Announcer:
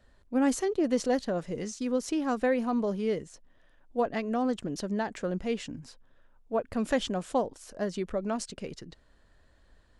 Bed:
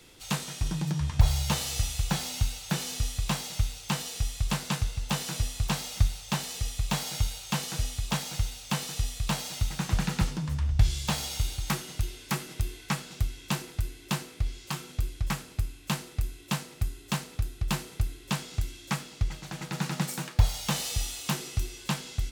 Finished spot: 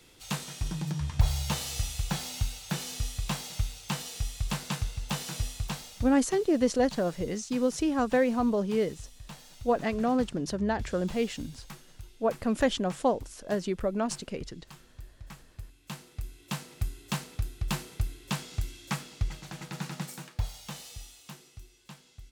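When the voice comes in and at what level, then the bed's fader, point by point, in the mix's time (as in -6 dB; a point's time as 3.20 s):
5.70 s, +2.0 dB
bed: 5.51 s -3 dB
6.36 s -16.5 dB
15.31 s -16.5 dB
16.80 s -2 dB
19.34 s -2 dB
21.60 s -18.5 dB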